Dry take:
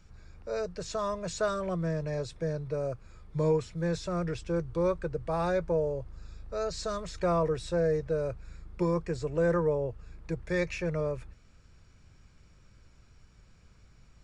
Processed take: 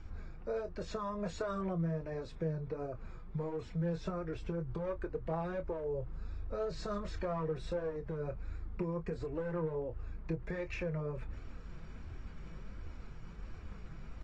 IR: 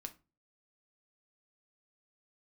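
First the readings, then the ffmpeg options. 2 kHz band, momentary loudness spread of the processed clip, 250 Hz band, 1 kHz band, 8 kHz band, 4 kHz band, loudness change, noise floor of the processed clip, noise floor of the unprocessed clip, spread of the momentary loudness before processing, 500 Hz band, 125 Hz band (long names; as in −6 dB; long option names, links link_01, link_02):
−8.5 dB, 13 LU, −6.0 dB, −7.5 dB, below −10 dB, −10.0 dB, −8.0 dB, −48 dBFS, −59 dBFS, 11 LU, −8.5 dB, −5.0 dB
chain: -filter_complex "[0:a]aeval=exprs='clip(val(0),-1,0.0631)':channel_layout=same,aemphasis=mode=reproduction:type=75fm,areverse,acompressor=mode=upward:threshold=-37dB:ratio=2.5,areverse,bandreject=frequency=580:width=12,alimiter=level_in=3dB:limit=-24dB:level=0:latency=1:release=120,volume=-3dB,acompressor=threshold=-35dB:ratio=12,flanger=delay=2.5:depth=3.8:regen=-14:speed=1.4:shape=triangular,highshelf=frequency=2600:gain=-5,asplit=2[link_01][link_02];[link_02]adelay=25,volume=-11dB[link_03];[link_01][link_03]amix=inputs=2:normalize=0,volume=5dB" -ar 32000 -c:a aac -b:a 32k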